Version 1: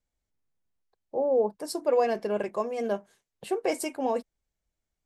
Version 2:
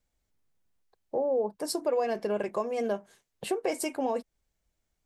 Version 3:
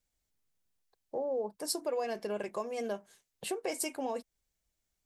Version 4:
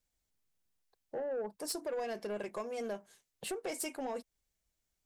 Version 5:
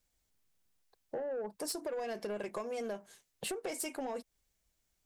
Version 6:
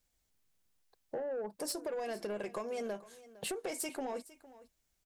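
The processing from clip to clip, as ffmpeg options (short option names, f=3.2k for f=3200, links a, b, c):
-af "acompressor=threshold=-34dB:ratio=2.5,volume=5dB"
-af "highshelf=f=2.6k:g=8,volume=-6.5dB"
-af "asoftclip=type=tanh:threshold=-30dB,volume=-1dB"
-af "acompressor=threshold=-40dB:ratio=6,volume=4.5dB"
-af "aecho=1:1:458:0.119"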